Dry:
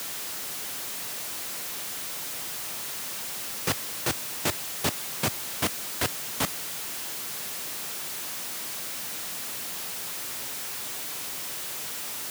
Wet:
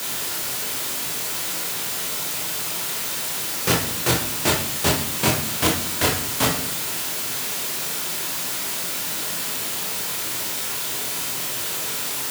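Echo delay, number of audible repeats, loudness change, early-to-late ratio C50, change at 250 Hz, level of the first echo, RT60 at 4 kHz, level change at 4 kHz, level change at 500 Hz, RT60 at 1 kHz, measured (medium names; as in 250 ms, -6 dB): no echo, no echo, +8.0 dB, 5.0 dB, +10.0 dB, no echo, 0.45 s, +8.5 dB, +9.5 dB, 0.55 s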